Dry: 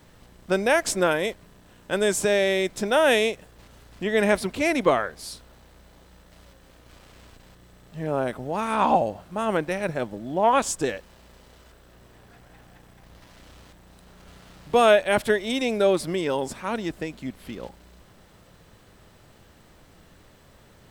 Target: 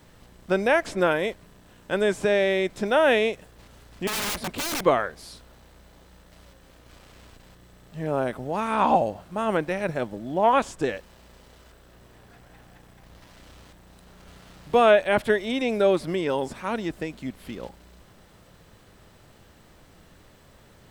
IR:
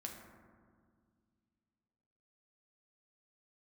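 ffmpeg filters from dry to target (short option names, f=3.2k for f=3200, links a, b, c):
-filter_complex "[0:a]acrossover=split=3500[a][b];[b]acompressor=threshold=-44dB:ratio=4:attack=1:release=60[c];[a][c]amix=inputs=2:normalize=0,asettb=1/sr,asplit=3[d][e][f];[d]atrim=end=4.074[g];[e]atrim=start=4.07:end=4.84,asetpts=PTS-STARTPTS,afade=t=in:d=0.004:c=qsin,afade=t=out:st=0.766:d=0.004:c=qsin,aeval=exprs='(mod(15*val(0)+1,2)-1)/15':c=same[h];[f]atrim=start=4.836[i];[g][h]acrossfade=d=0.004:c1=hsin:c2=qsin[j];[j][i]acrossfade=d=0.004:c1=qsin:c2=hsin"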